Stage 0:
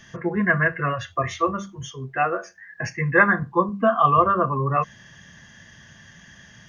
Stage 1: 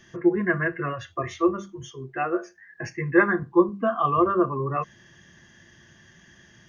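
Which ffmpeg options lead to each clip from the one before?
ffmpeg -i in.wav -af "equalizer=frequency=350:width=4.2:gain=14.5,volume=-6dB" out.wav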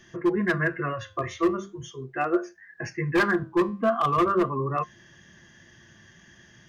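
ffmpeg -i in.wav -af "asoftclip=type=hard:threshold=-16.5dB,flanger=delay=2.8:depth=6.8:regen=85:speed=0.41:shape=sinusoidal,volume=4.5dB" out.wav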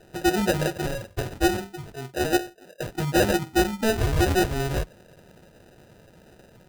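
ffmpeg -i in.wav -af "acrusher=samples=40:mix=1:aa=0.000001,volume=1.5dB" out.wav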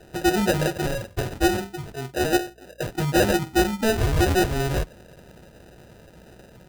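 ffmpeg -i in.wav -filter_complex "[0:a]asplit=2[link_01][link_02];[link_02]asoftclip=type=hard:threshold=-28dB,volume=-6dB[link_03];[link_01][link_03]amix=inputs=2:normalize=0,aeval=exprs='val(0)+0.00158*(sin(2*PI*60*n/s)+sin(2*PI*2*60*n/s)/2+sin(2*PI*3*60*n/s)/3+sin(2*PI*4*60*n/s)/4+sin(2*PI*5*60*n/s)/5)':channel_layout=same" out.wav

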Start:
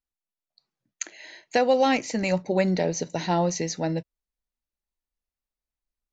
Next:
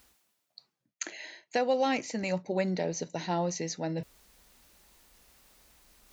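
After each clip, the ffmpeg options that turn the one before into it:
ffmpeg -i in.wav -af "highpass=frequency=87:poles=1,areverse,acompressor=mode=upward:threshold=-24dB:ratio=2.5,areverse,volume=-6.5dB" out.wav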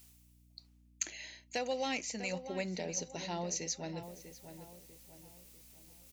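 ffmpeg -i in.wav -filter_complex "[0:a]aeval=exprs='val(0)+0.002*(sin(2*PI*60*n/s)+sin(2*PI*2*60*n/s)/2+sin(2*PI*3*60*n/s)/3+sin(2*PI*4*60*n/s)/4+sin(2*PI*5*60*n/s)/5)':channel_layout=same,aexciter=amount=2.1:drive=6.9:freq=2200,asplit=2[link_01][link_02];[link_02]adelay=646,lowpass=frequency=1800:poles=1,volume=-10dB,asplit=2[link_03][link_04];[link_04]adelay=646,lowpass=frequency=1800:poles=1,volume=0.43,asplit=2[link_05][link_06];[link_06]adelay=646,lowpass=frequency=1800:poles=1,volume=0.43,asplit=2[link_07][link_08];[link_08]adelay=646,lowpass=frequency=1800:poles=1,volume=0.43,asplit=2[link_09][link_10];[link_10]adelay=646,lowpass=frequency=1800:poles=1,volume=0.43[link_11];[link_01][link_03][link_05][link_07][link_09][link_11]amix=inputs=6:normalize=0,volume=-9dB" out.wav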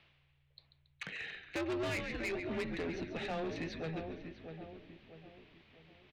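ffmpeg -i in.wav -filter_complex "[0:a]highpass=frequency=280:width_type=q:width=0.5412,highpass=frequency=280:width_type=q:width=1.307,lowpass=frequency=3500:width_type=q:width=0.5176,lowpass=frequency=3500:width_type=q:width=0.7071,lowpass=frequency=3500:width_type=q:width=1.932,afreqshift=-160,asplit=6[link_01][link_02][link_03][link_04][link_05][link_06];[link_02]adelay=139,afreqshift=-75,volume=-11dB[link_07];[link_03]adelay=278,afreqshift=-150,volume=-17dB[link_08];[link_04]adelay=417,afreqshift=-225,volume=-23dB[link_09];[link_05]adelay=556,afreqshift=-300,volume=-29.1dB[link_10];[link_06]adelay=695,afreqshift=-375,volume=-35.1dB[link_11];[link_01][link_07][link_08][link_09][link_10][link_11]amix=inputs=6:normalize=0,asoftclip=type=tanh:threshold=-39.5dB,volume=6.5dB" out.wav

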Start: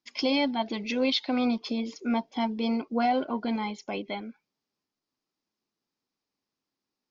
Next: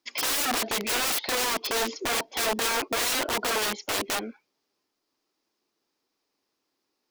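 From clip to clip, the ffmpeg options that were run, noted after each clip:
ffmpeg -i in.wav -filter_complex "[0:a]acrossover=split=6100[link_01][link_02];[link_02]acompressor=threshold=-55dB:ratio=4:attack=1:release=60[link_03];[link_01][link_03]amix=inputs=2:normalize=0,aeval=exprs='(mod(29.9*val(0)+1,2)-1)/29.9':channel_layout=same,lowshelf=frequency=260:width_type=q:width=1.5:gain=-7,volume=8dB" out.wav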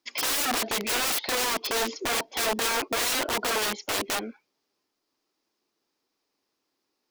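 ffmpeg -i in.wav -af anull out.wav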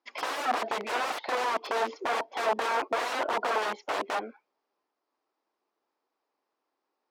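ffmpeg -i in.wav -af "bandpass=frequency=840:width_type=q:width=1.1:csg=0,volume=3.5dB" out.wav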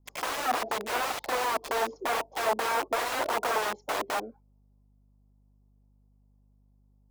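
ffmpeg -i in.wav -filter_complex "[0:a]aeval=exprs='val(0)+0.000794*(sin(2*PI*50*n/s)+sin(2*PI*2*50*n/s)/2+sin(2*PI*3*50*n/s)/3+sin(2*PI*4*50*n/s)/4+sin(2*PI*5*50*n/s)/5)':channel_layout=same,acrossover=split=870|6000[link_01][link_02][link_03];[link_02]acrusher=bits=5:mix=0:aa=0.000001[link_04];[link_01][link_04][link_03]amix=inputs=3:normalize=0" out.wav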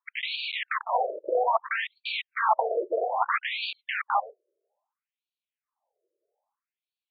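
ffmpeg -i in.wav -af "afftfilt=real='re*between(b*sr/1024,440*pow(3300/440,0.5+0.5*sin(2*PI*0.61*pts/sr))/1.41,440*pow(3300/440,0.5+0.5*sin(2*PI*0.61*pts/sr))*1.41)':imag='im*between(b*sr/1024,440*pow(3300/440,0.5+0.5*sin(2*PI*0.61*pts/sr))/1.41,440*pow(3300/440,0.5+0.5*sin(2*PI*0.61*pts/sr))*1.41)':win_size=1024:overlap=0.75,volume=8.5dB" out.wav

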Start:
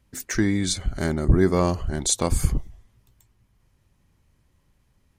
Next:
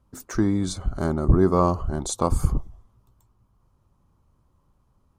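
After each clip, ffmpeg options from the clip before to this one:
ffmpeg -i in.wav -af "highshelf=frequency=1500:width_type=q:width=3:gain=-7.5" out.wav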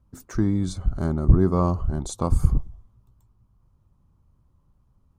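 ffmpeg -i in.wav -af "bass=frequency=250:gain=8,treble=frequency=4000:gain=-1,volume=-5dB" out.wav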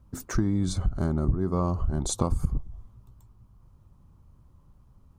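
ffmpeg -i in.wav -af "acompressor=threshold=-27dB:ratio=10,volume=6dB" out.wav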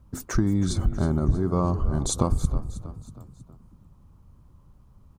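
ffmpeg -i in.wav -filter_complex "[0:a]asplit=5[link_01][link_02][link_03][link_04][link_05];[link_02]adelay=319,afreqshift=36,volume=-14.5dB[link_06];[link_03]adelay=638,afreqshift=72,volume=-21.6dB[link_07];[link_04]adelay=957,afreqshift=108,volume=-28.8dB[link_08];[link_05]adelay=1276,afreqshift=144,volume=-35.9dB[link_09];[link_01][link_06][link_07][link_08][link_09]amix=inputs=5:normalize=0,volume=2.5dB" out.wav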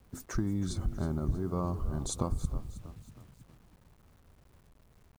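ffmpeg -i in.wav -af "acrusher=bits=8:mix=0:aa=0.000001,volume=-9dB" out.wav

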